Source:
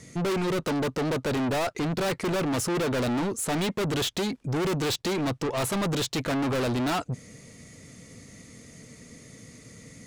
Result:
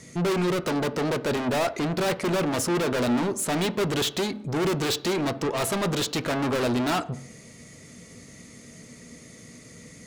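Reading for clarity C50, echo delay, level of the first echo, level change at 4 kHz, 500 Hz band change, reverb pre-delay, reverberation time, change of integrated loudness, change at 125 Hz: 16.5 dB, no echo audible, no echo audible, +2.0 dB, +2.5 dB, 3 ms, 0.60 s, +2.0 dB, 0.0 dB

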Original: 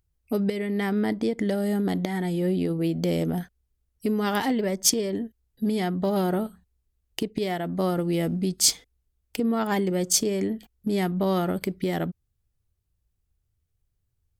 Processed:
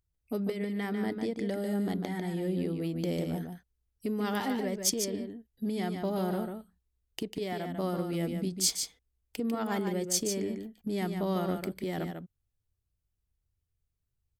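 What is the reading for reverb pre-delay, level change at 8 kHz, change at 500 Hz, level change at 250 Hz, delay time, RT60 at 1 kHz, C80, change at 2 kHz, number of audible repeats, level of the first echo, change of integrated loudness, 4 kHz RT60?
no reverb audible, −6.5 dB, −6.5 dB, −6.5 dB, 147 ms, no reverb audible, no reverb audible, −6.5 dB, 1, −6.5 dB, −7.0 dB, no reverb audible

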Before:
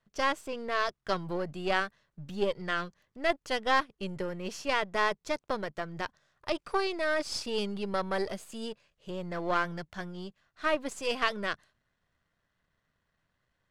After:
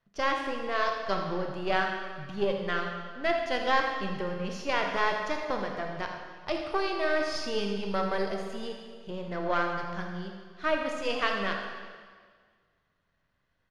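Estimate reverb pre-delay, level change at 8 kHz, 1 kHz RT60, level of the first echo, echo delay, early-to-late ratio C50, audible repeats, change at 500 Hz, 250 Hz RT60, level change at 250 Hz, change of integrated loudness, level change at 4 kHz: 15 ms, −3.5 dB, 1.7 s, −11.5 dB, 81 ms, 3.0 dB, 1, +2.0 dB, 1.7 s, +2.0 dB, +1.5 dB, +0.5 dB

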